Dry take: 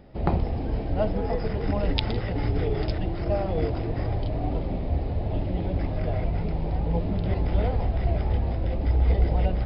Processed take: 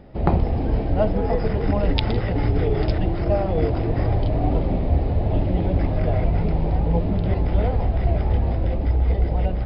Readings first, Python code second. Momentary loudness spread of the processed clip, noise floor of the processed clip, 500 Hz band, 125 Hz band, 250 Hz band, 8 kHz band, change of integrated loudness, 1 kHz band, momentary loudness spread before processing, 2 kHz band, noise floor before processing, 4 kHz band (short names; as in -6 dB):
1 LU, -24 dBFS, +5.0 dB, +5.0 dB, +5.5 dB, n/a, +5.0 dB, +5.0 dB, 5 LU, +3.5 dB, -30 dBFS, +2.0 dB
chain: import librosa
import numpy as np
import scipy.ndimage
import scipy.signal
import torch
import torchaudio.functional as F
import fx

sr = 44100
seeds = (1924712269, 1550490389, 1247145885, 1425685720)

y = fx.high_shelf(x, sr, hz=3800.0, db=-7.0)
y = fx.rider(y, sr, range_db=10, speed_s=0.5)
y = y * 10.0 ** (5.0 / 20.0)